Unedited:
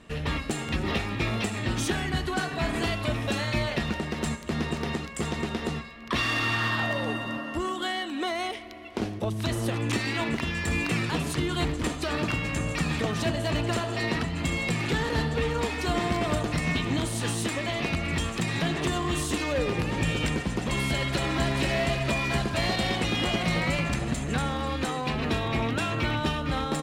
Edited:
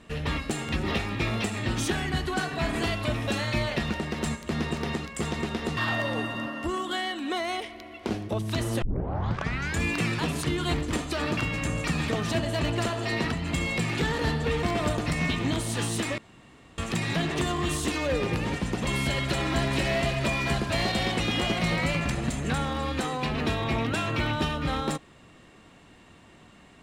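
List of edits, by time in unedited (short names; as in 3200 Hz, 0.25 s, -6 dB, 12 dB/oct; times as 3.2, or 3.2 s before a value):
5.77–6.68 cut
9.73 tape start 0.98 s
15.54–16.09 cut
17.64–18.24 room tone
19.99–20.37 cut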